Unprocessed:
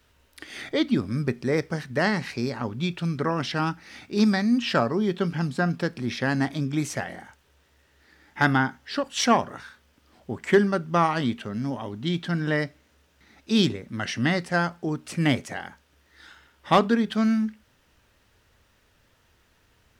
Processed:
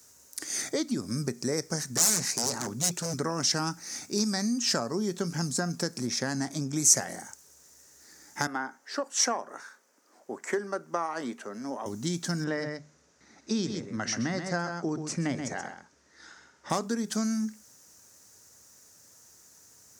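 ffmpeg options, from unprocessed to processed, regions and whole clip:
ffmpeg -i in.wav -filter_complex "[0:a]asettb=1/sr,asplit=3[link_01][link_02][link_03];[link_01]atrim=end=1.974[link_04];[link_02]atrim=start=1.97:end=3.14,asetpts=PTS-STARTPTS,afade=type=in:duration=0.004:curve=qsin,afade=type=out:start_time=1.166:duration=0.004:curve=qsin,highpass=frequency=91:width=0.5412,highpass=frequency=91:width=1.3066,aeval=exprs='0.0473*(abs(mod(val(0)/0.0473+3,4)-2)-1)':channel_layout=same[link_05];[link_03]atrim=start=3.136[link_06];[link_04][link_05]acrossfade=duration=0.004:curve1=hsin:curve2=qsin[link_07];[link_07][link_06]acrossfade=duration=0.004:curve1=qsin:curve2=hsin,asettb=1/sr,asplit=3[link_08][link_09][link_10];[link_08]atrim=end=6.074[link_11];[link_09]atrim=start=6.07:end=6.76,asetpts=PTS-STARTPTS,afade=type=in:duration=0.004:curve=qsin,afade=type=out:start_time=0.686:duration=0.004:curve=qsin,aeval=exprs='if(lt(val(0),0),0.708*val(0),val(0))':channel_layout=same,highshelf=frequency=7500:gain=-7.5[link_12];[link_10]atrim=start=6.756[link_13];[link_11][link_12]acrossfade=duration=0.004:curve1=hsin:curve2=qsin[link_14];[link_14][link_13]acrossfade=duration=0.004:curve1=qsin:curve2=hsin,asettb=1/sr,asplit=3[link_15][link_16][link_17];[link_15]atrim=end=8.474[link_18];[link_16]atrim=start=8.47:end=11.86,asetpts=PTS-STARTPTS,afade=type=in:duration=0.004:curve=qsin,afade=type=out:start_time=3.386:duration=0.004:curve=qsin,highpass=frequency=180:poles=1,acrossover=split=270 2700:gain=0.112 1 0.178[link_19][link_20][link_21];[link_19][link_20][link_21]amix=inputs=3:normalize=0[link_22];[link_17]atrim=start=11.856[link_23];[link_18][link_22]acrossfade=duration=0.004:curve1=hsin:curve2=qsin[link_24];[link_24][link_23]acrossfade=duration=0.004:curve1=qsin:curve2=hsin,asettb=1/sr,asplit=3[link_25][link_26][link_27];[link_25]atrim=end=12.444[link_28];[link_26]atrim=start=12.44:end=16.7,asetpts=PTS-STARTPTS,afade=type=in:duration=0.004:curve=qsin,afade=type=out:start_time=4.256:duration=0.004:curve=qsin,lowpass=3300,bandreject=frequency=50:width_type=h:width=6,bandreject=frequency=100:width_type=h:width=6,bandreject=frequency=150:width_type=h:width=6,aecho=1:1:130:0.355,atrim=end_sample=187866[link_29];[link_27]atrim=start=16.696[link_30];[link_28][link_29]acrossfade=duration=0.004:curve1=hsin:curve2=qsin[link_31];[link_31][link_30]acrossfade=duration=0.004:curve1=qsin:curve2=hsin,acompressor=threshold=-26dB:ratio=6,highpass=130,highshelf=frequency=4500:width_type=q:width=3:gain=13.5" out.wav

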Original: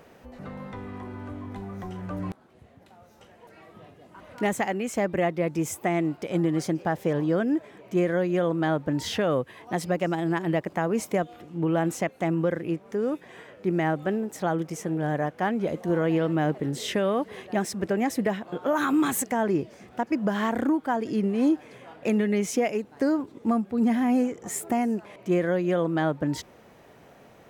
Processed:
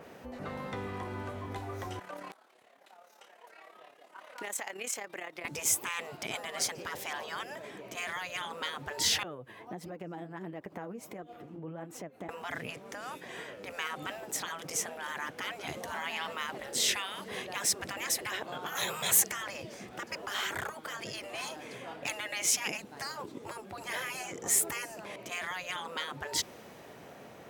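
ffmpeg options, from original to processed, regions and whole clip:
ffmpeg -i in.wav -filter_complex "[0:a]asettb=1/sr,asplit=3[link_01][link_02][link_03];[link_01]atrim=end=1.994[link_04];[link_02]atrim=start=1.99:end=5.45,asetpts=PTS-STARTPTS,afade=type=in:duration=0.004:curve=qsin,afade=type=out:start_time=3.456:duration=0.004:curve=qsin,highpass=670,acompressor=threshold=-35dB:ratio=5:attack=3.2:release=140:knee=1:detection=peak,tremolo=f=35:d=0.621[link_05];[link_03]atrim=start=5.446[link_06];[link_04][link_05]acrossfade=duration=0.004:curve1=hsin:curve2=qsin[link_07];[link_07][link_06]acrossfade=duration=0.004:curve1=qsin:curve2=hsin,asettb=1/sr,asplit=3[link_08][link_09][link_10];[link_08]atrim=end=9.234[link_11];[link_09]atrim=start=9.23:end=12.29,asetpts=PTS-STARTPTS,afade=type=in:duration=0.004:curve=qsin,afade=type=out:start_time=3.056:duration=0.004:curve=qsin,flanger=delay=2.3:depth=8:regen=41:speed=1.5:shape=triangular,equalizer=frequency=6800:width_type=o:width=2.9:gain=-10,acompressor=threshold=-38dB:ratio=16:attack=3.2:release=140:knee=1:detection=peak[link_12];[link_10]atrim=start=12.286[link_13];[link_11][link_12]acrossfade=duration=0.004:curve1=hsin:curve2=qsin[link_14];[link_14][link_13]acrossfade=duration=0.004:curve1=qsin:curve2=hsin,highpass=frequency=110:poles=1,afftfilt=real='re*lt(hypot(re,im),0.0794)':imag='im*lt(hypot(re,im),0.0794)':win_size=1024:overlap=0.75,adynamicequalizer=threshold=0.00224:dfrequency=2700:dqfactor=0.7:tfrequency=2700:tqfactor=0.7:attack=5:release=100:ratio=0.375:range=3:mode=boostabove:tftype=highshelf,volume=2.5dB" out.wav

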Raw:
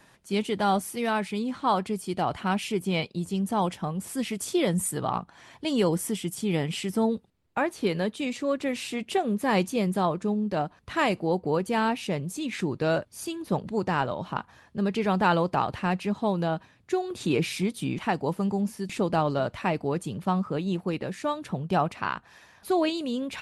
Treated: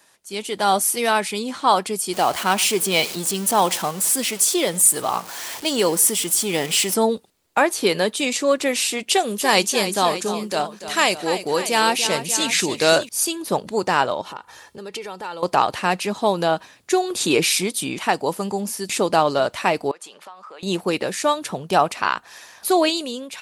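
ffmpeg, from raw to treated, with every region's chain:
ffmpeg -i in.wav -filter_complex "[0:a]asettb=1/sr,asplit=3[link_01][link_02][link_03];[link_01]atrim=end=2.134[link_04];[link_02]atrim=start=2.13:end=6.94,asetpts=PTS-STARTPTS,afade=type=in:duration=0.004:curve=qsin,afade=type=out:start_time=4.806:duration=0.004:curve=qsin,aeval=exprs='val(0)+0.5*0.0133*sgn(val(0))':channel_layout=same,lowshelf=frequency=67:gain=-12,aecho=1:1:101:0.075,atrim=end_sample=212121[link_05];[link_03]atrim=start=6.936[link_06];[link_04][link_05]acrossfade=duration=0.004:curve1=hsin:curve2=qsin[link_07];[link_07][link_06]acrossfade=duration=0.004:curve1=qsin:curve2=hsin,asettb=1/sr,asplit=3[link_08][link_09][link_10];[link_08]atrim=end=9.094[link_11];[link_09]atrim=start=9.09:end=13.09,asetpts=PTS-STARTPTS,afade=type=in:duration=0.004:curve=qsin,afade=type=out:start_time=3.996:duration=0.004:curve=qsin,acrossover=split=6600[link_12][link_13];[link_13]acompressor=threshold=-54dB:ratio=4:attack=1:release=60[link_14];[link_12][link_14]amix=inputs=2:normalize=0,highshelf=frequency=3100:gain=10.5,aecho=1:1:291|587:0.266|0.2,atrim=end_sample=176400[link_15];[link_10]atrim=start=13.086[link_16];[link_11][link_15]acrossfade=duration=0.004:curve1=hsin:curve2=qsin[link_17];[link_17][link_16]acrossfade=duration=0.004:curve1=qsin:curve2=hsin,asettb=1/sr,asplit=3[link_18][link_19][link_20];[link_18]atrim=end=14.214[link_21];[link_19]atrim=start=14.21:end=15.43,asetpts=PTS-STARTPTS,afade=type=in:duration=0.004:curve=qsin,afade=type=out:start_time=1.216:duration=0.004:curve=qsin,aecho=1:1:2.2:0.4,atrim=end_sample=53802,acompressor=threshold=-40dB:ratio=4:attack=3.2:release=140:knee=1:detection=peak[link_22];[link_20]atrim=start=15.426[link_23];[link_21][link_22]acrossfade=duration=0.004:curve1=hsin:curve2=qsin[link_24];[link_24][link_23]acrossfade=duration=0.004:curve1=qsin:curve2=hsin,asettb=1/sr,asplit=3[link_25][link_26][link_27];[link_25]atrim=end=19.914[link_28];[link_26]atrim=start=19.91:end=20.63,asetpts=PTS-STARTPTS,afade=type=in:duration=0.004:curve=qsin,afade=type=out:start_time=0.716:duration=0.004:curve=qsin,highpass=870,aemphasis=mode=reproduction:type=75fm,acompressor=threshold=-47dB:ratio=6:attack=3.2:release=140:knee=1:detection=peak[link_29];[link_27]atrim=start=20.626[link_30];[link_28][link_29]acrossfade=duration=0.004:curve1=hsin:curve2=qsin[link_31];[link_31][link_30]acrossfade=duration=0.004:curve1=qsin:curve2=hsin,bass=frequency=250:gain=-14,treble=frequency=4000:gain=10,dynaudnorm=framelen=170:gausssize=7:maxgain=13dB,volume=-1.5dB" out.wav

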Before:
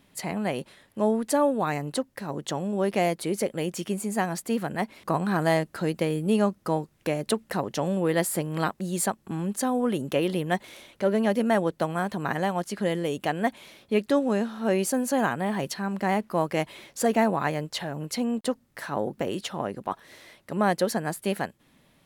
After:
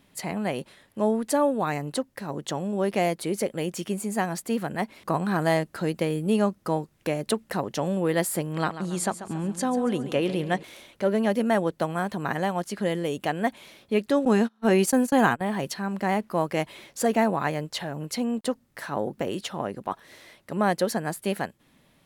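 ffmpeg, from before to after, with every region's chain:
ffmpeg -i in.wav -filter_complex "[0:a]asettb=1/sr,asplit=3[link_01][link_02][link_03];[link_01]atrim=end=8.534[link_04];[link_02]atrim=start=8.53:end=10.63,asetpts=PTS-STARTPTS,afade=type=in:duration=0.004:curve=qsin,afade=type=out:start_time=2.096:duration=0.004:curve=qsin,lowpass=9000,aecho=1:1:139|278|417|556|695:0.237|0.111|0.0524|0.0246|0.0116,atrim=end_sample=92610[link_05];[link_03]atrim=start=10.626[link_06];[link_04][link_05]acrossfade=duration=0.004:curve1=hsin:curve2=qsin[link_07];[link_07][link_06]acrossfade=duration=0.004:curve1=qsin:curve2=hsin,asettb=1/sr,asplit=3[link_08][link_09][link_10];[link_08]atrim=end=14.254[link_11];[link_09]atrim=start=14.25:end=15.41,asetpts=PTS-STARTPTS,afade=type=in:duration=0.004:curve=qsin,afade=type=out:start_time=1.156:duration=0.004:curve=qsin,agate=range=-33dB:threshold=-30dB:ratio=16:release=100:detection=peak,bandreject=frequency=590:width=6.9,acontrast=28[link_12];[link_10]atrim=start=15.406[link_13];[link_11][link_12]acrossfade=duration=0.004:curve1=hsin:curve2=qsin[link_14];[link_14][link_13]acrossfade=duration=0.004:curve1=qsin:curve2=hsin" out.wav

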